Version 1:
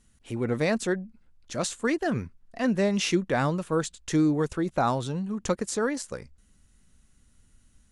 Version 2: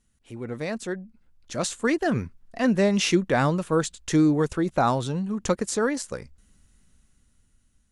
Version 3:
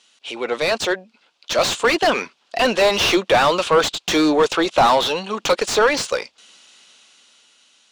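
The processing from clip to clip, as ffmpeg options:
-af "dynaudnorm=f=300:g=9:m=3.76,volume=0.473"
-filter_complex "[0:a]aexciter=amount=11.4:drive=2.7:freq=2700,highpass=550,lowpass=3500,asplit=2[s0][s1];[s1]highpass=f=720:p=1,volume=35.5,asoftclip=type=tanh:threshold=0.891[s2];[s0][s2]amix=inputs=2:normalize=0,lowpass=f=1000:p=1,volume=0.501,volume=0.891"

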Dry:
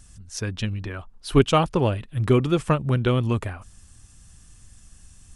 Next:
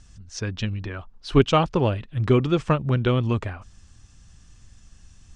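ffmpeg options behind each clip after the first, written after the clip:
-af "lowpass=f=6500:w=0.5412,lowpass=f=6500:w=1.3066"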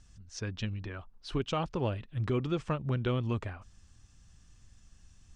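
-af "alimiter=limit=0.211:level=0:latency=1:release=144,volume=0.398"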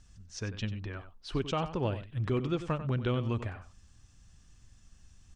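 -filter_complex "[0:a]asplit=2[s0][s1];[s1]adelay=93.29,volume=0.251,highshelf=f=4000:g=-2.1[s2];[s0][s2]amix=inputs=2:normalize=0"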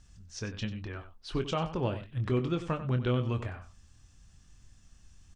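-filter_complex "[0:a]asplit=2[s0][s1];[s1]adelay=24,volume=0.355[s2];[s0][s2]amix=inputs=2:normalize=0"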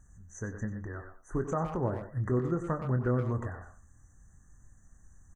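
-filter_complex "[0:a]afftfilt=real='re*(1-between(b*sr/4096,2000,5900))':imag='im*(1-between(b*sr/4096,2000,5900))':win_size=4096:overlap=0.75,asplit=2[s0][s1];[s1]adelay=120,highpass=300,lowpass=3400,asoftclip=type=hard:threshold=0.0422,volume=0.398[s2];[s0][s2]amix=inputs=2:normalize=0"

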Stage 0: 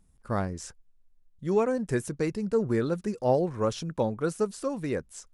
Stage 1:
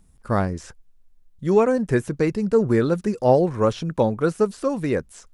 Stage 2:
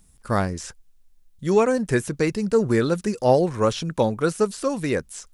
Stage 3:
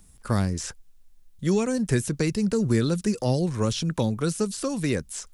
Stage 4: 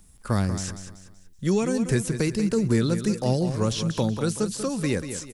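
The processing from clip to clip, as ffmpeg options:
-filter_complex "[0:a]acrossover=split=3500[s0][s1];[s1]acompressor=threshold=0.00316:ratio=4:attack=1:release=60[s2];[s0][s2]amix=inputs=2:normalize=0,volume=2.37"
-af "highshelf=f=2300:g=10,volume=0.841"
-filter_complex "[0:a]acrossover=split=260|3000[s0][s1][s2];[s1]acompressor=threshold=0.0282:ratio=6[s3];[s0][s3][s2]amix=inputs=3:normalize=0,volume=1.33"
-af "aecho=1:1:189|378|567|756:0.316|0.12|0.0457|0.0174"

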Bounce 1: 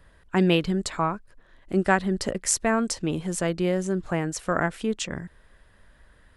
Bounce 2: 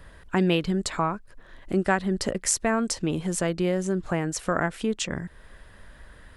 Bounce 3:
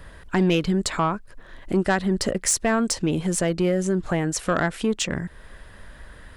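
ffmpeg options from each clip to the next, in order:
-af "acompressor=threshold=0.00708:ratio=1.5,volume=2.37"
-af "asoftclip=type=tanh:threshold=0.15,volume=1.68"

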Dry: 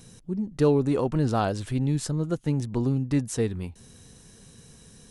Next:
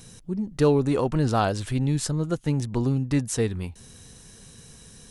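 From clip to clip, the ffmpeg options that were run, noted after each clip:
-af "equalizer=f=260:t=o:w=3:g=-4,volume=1.68"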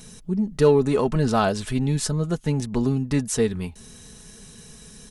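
-filter_complex "[0:a]aecho=1:1:4.7:0.48,asplit=2[s0][s1];[s1]asoftclip=type=tanh:threshold=0.141,volume=0.282[s2];[s0][s2]amix=inputs=2:normalize=0"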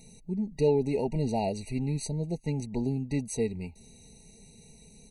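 -af "afftfilt=real='re*eq(mod(floor(b*sr/1024/950),2),0)':imag='im*eq(mod(floor(b*sr/1024/950),2),0)':win_size=1024:overlap=0.75,volume=0.422"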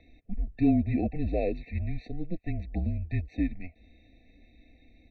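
-af "highpass=f=150:t=q:w=0.5412,highpass=f=150:t=q:w=1.307,lowpass=f=3300:t=q:w=0.5176,lowpass=f=3300:t=q:w=0.7071,lowpass=f=3300:t=q:w=1.932,afreqshift=-170,acontrast=29,volume=0.668"

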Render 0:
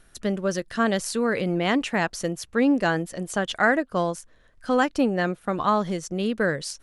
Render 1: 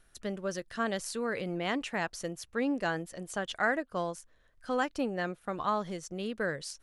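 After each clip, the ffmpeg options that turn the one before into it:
-af "equalizer=f=220:w=0.89:g=-3.5,volume=0.398"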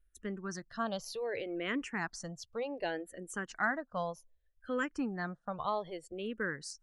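-filter_complex "[0:a]afftdn=nr=19:nf=-53,asplit=2[s0][s1];[s1]afreqshift=-0.65[s2];[s0][s2]amix=inputs=2:normalize=1,volume=0.891"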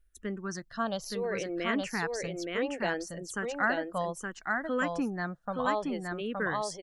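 -af "aecho=1:1:870:0.708,volume=1.5"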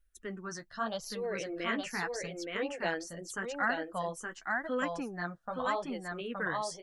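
-af "lowshelf=f=420:g=-5,flanger=delay=3.6:depth=9.5:regen=-23:speed=0.83:shape=sinusoidal,volume=1.26"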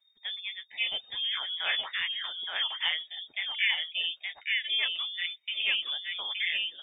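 -af "lowpass=f=3100:t=q:w=0.5098,lowpass=f=3100:t=q:w=0.6013,lowpass=f=3100:t=q:w=0.9,lowpass=f=3100:t=q:w=2.563,afreqshift=-3700,volume=1.5"

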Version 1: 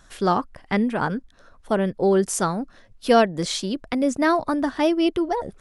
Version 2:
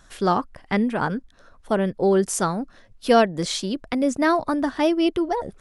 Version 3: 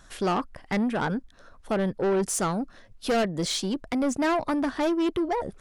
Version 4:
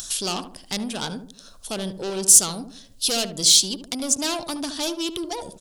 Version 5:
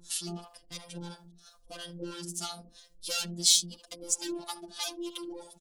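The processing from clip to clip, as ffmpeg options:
-af anull
-af "asoftclip=type=tanh:threshold=0.0944"
-filter_complex "[0:a]asplit=2[s0][s1];[s1]adelay=73,lowpass=f=920:p=1,volume=0.398,asplit=2[s2][s3];[s3]adelay=73,lowpass=f=920:p=1,volume=0.44,asplit=2[s4][s5];[s5]adelay=73,lowpass=f=920:p=1,volume=0.44,asplit=2[s6][s7];[s7]adelay=73,lowpass=f=920:p=1,volume=0.44,asplit=2[s8][s9];[s9]adelay=73,lowpass=f=920:p=1,volume=0.44[s10];[s0][s2][s4][s6][s8][s10]amix=inputs=6:normalize=0,acompressor=mode=upward:threshold=0.0178:ratio=2.5,aexciter=amount=8.9:drive=6.3:freq=2900,volume=0.562"
-filter_complex "[0:a]acrossover=split=540[s0][s1];[s0]aeval=exprs='val(0)*(1-1/2+1/2*cos(2*PI*3*n/s))':c=same[s2];[s1]aeval=exprs='val(0)*(1-1/2-1/2*cos(2*PI*3*n/s))':c=same[s3];[s2][s3]amix=inputs=2:normalize=0,afftfilt=real='hypot(re,im)*cos(PI*b)':imag='0':win_size=1024:overlap=0.75,asplit=2[s4][s5];[s5]adelay=3.2,afreqshift=0.93[s6];[s4][s6]amix=inputs=2:normalize=1"

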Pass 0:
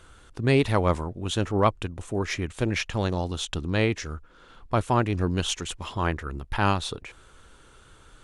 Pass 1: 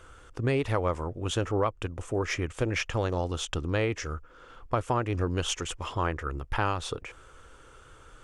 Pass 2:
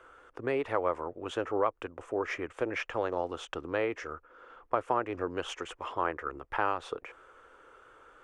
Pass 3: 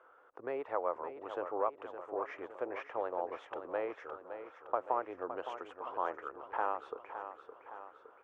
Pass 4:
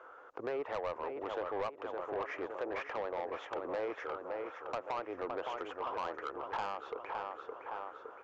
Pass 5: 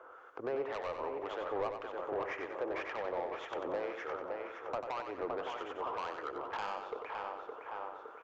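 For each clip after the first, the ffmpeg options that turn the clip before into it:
-af "equalizer=f=200:t=o:w=0.33:g=-10,equalizer=f=500:t=o:w=0.33:g=5,equalizer=f=1250:t=o:w=0.33:g=4,equalizer=f=4000:t=o:w=0.33:g=-8,equalizer=f=10000:t=o:w=0.33:g=-6,acompressor=threshold=0.0708:ratio=6"
-filter_complex "[0:a]acrossover=split=300 2400:gain=0.112 1 0.178[s0][s1][s2];[s0][s1][s2]amix=inputs=3:normalize=0"
-filter_complex "[0:a]bandpass=f=770:t=q:w=1.2:csg=0,asplit=2[s0][s1];[s1]aecho=0:1:564|1128|1692|2256|2820|3384:0.316|0.174|0.0957|0.0526|0.0289|0.0159[s2];[s0][s2]amix=inputs=2:normalize=0,volume=0.75"
-af "acompressor=threshold=0.00794:ratio=2,aresample=16000,asoftclip=type=tanh:threshold=0.0112,aresample=44100,volume=2.66"
-filter_complex "[0:a]acrossover=split=1200[s0][s1];[s0]aeval=exprs='val(0)*(1-0.5/2+0.5/2*cos(2*PI*1.9*n/s))':c=same[s2];[s1]aeval=exprs='val(0)*(1-0.5/2-0.5/2*cos(2*PI*1.9*n/s))':c=same[s3];[s2][s3]amix=inputs=2:normalize=0,aecho=1:1:93|186|279|372|465:0.447|0.183|0.0751|0.0308|0.0126,volume=1.19"

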